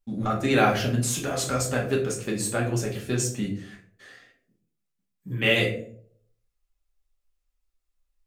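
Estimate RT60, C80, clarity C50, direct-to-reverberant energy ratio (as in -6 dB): not exponential, 12.5 dB, 8.0 dB, -2.5 dB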